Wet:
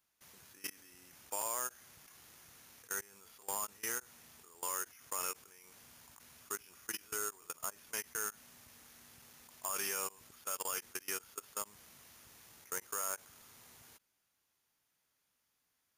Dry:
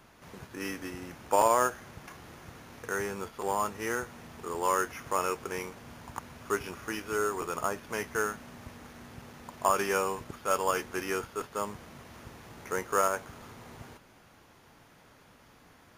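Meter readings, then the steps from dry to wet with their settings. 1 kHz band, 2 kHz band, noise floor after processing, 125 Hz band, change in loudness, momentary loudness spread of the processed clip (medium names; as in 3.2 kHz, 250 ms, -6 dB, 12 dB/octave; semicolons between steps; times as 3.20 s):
-15.5 dB, -10.5 dB, -81 dBFS, -20.0 dB, -8.0 dB, 20 LU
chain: pre-emphasis filter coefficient 0.9; level held to a coarse grid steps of 22 dB; endings held to a fixed fall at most 600 dB/s; trim +6.5 dB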